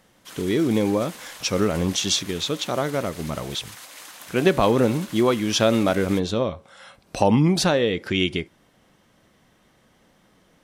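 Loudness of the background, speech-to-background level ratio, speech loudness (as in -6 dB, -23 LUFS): -40.0 LUFS, 17.5 dB, -22.5 LUFS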